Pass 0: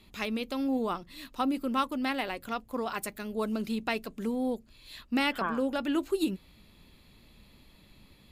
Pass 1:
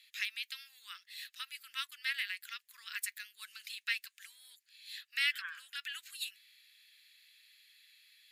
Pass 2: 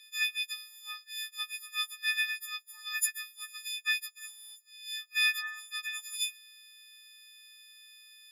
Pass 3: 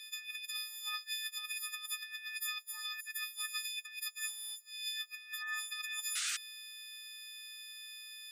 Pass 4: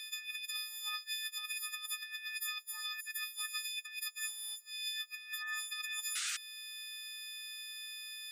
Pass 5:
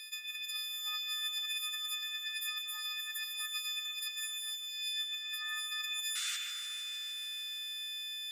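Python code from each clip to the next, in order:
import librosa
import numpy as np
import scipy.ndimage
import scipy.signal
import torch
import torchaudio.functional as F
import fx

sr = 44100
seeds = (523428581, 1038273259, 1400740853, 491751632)

y1 = scipy.signal.sosfilt(scipy.signal.ellip(4, 1.0, 60, 1700.0, 'highpass', fs=sr, output='sos'), x)
y1 = F.gain(torch.from_numpy(y1), 1.0).numpy()
y2 = fx.freq_snap(y1, sr, grid_st=6)
y2 = fx.high_shelf(y2, sr, hz=8900.0, db=-4.5)
y2 = F.gain(torch.from_numpy(y2), -1.5).numpy()
y3 = fx.over_compress(y2, sr, threshold_db=-42.0, ratio=-1.0)
y3 = fx.spec_paint(y3, sr, seeds[0], shape='noise', start_s=6.15, length_s=0.22, low_hz=1200.0, high_hz=9400.0, level_db=-37.0)
y4 = fx.band_squash(y3, sr, depth_pct=40)
y5 = fx.echo_stepped(y4, sr, ms=119, hz=2600.0, octaves=-0.7, feedback_pct=70, wet_db=-4.0)
y5 = fx.echo_crushed(y5, sr, ms=152, feedback_pct=80, bits=10, wet_db=-10)
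y5 = F.gain(torch.from_numpy(y5), -1.5).numpy()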